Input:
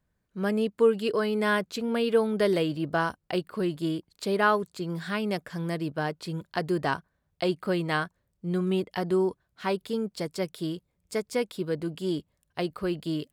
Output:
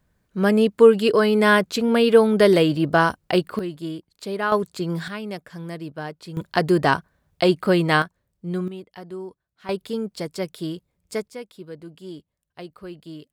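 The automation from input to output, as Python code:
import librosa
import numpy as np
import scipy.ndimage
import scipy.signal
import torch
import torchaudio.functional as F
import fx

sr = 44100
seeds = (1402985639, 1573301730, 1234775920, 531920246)

y = fx.gain(x, sr, db=fx.steps((0.0, 9.0), (3.59, -1.5), (4.52, 6.5), (5.08, -2.5), (6.37, 9.0), (8.02, 1.5), (8.68, -9.5), (9.69, 2.5), (11.28, -8.0)))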